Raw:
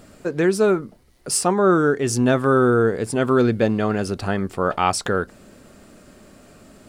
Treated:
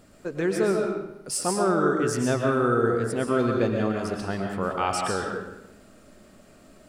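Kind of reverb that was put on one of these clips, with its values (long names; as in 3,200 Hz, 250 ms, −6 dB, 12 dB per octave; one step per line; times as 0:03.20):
comb and all-pass reverb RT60 0.89 s, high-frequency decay 0.85×, pre-delay 85 ms, DRR 1 dB
level −7.5 dB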